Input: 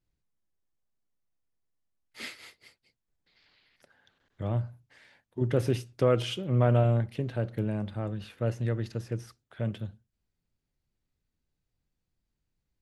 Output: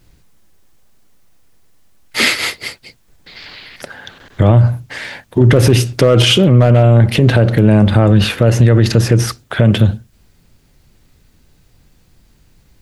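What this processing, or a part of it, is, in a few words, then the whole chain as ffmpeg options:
loud club master: -af "acompressor=threshold=-30dB:ratio=2,asoftclip=type=hard:threshold=-22dB,alimiter=level_in=32dB:limit=-1dB:release=50:level=0:latency=1,volume=-1dB"

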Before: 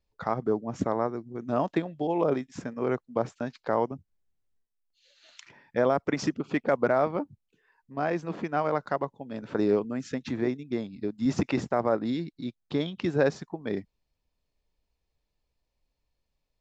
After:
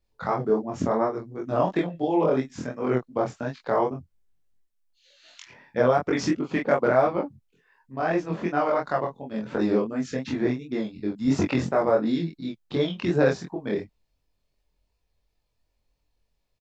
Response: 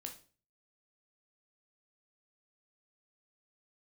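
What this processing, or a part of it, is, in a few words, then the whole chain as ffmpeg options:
double-tracked vocal: -filter_complex "[0:a]asplit=2[a][b];[b]adelay=23,volume=-2dB[c];[a][c]amix=inputs=2:normalize=0,flanger=delay=20:depth=4.9:speed=2.8,volume=4.5dB"

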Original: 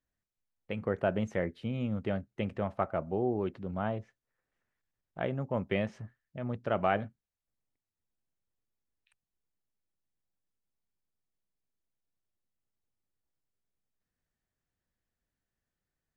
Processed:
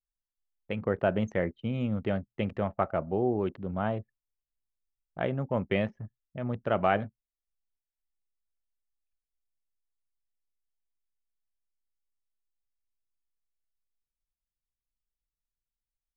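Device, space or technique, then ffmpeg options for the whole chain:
voice memo with heavy noise removal: -af "anlmdn=0.00398,dynaudnorm=f=130:g=3:m=3dB"

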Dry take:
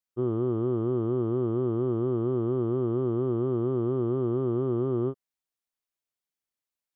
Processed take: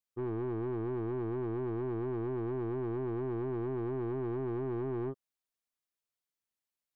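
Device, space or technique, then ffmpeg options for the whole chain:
saturation between pre-emphasis and de-emphasis: -af "highshelf=f=2.1k:g=12,asoftclip=type=tanh:threshold=-29dB,highshelf=f=2.1k:g=-12,volume=-2.5dB"

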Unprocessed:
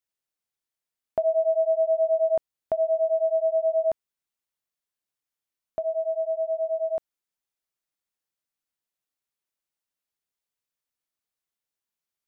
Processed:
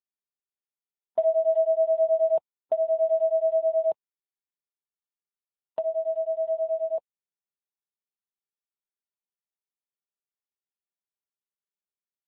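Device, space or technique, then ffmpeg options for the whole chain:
mobile call with aggressive noise cancelling: -af "highpass=f=140:w=0.5412,highpass=f=140:w=1.3066,afftdn=nr=34:nf=-35,volume=2dB" -ar 8000 -c:a libopencore_amrnb -b:a 7950

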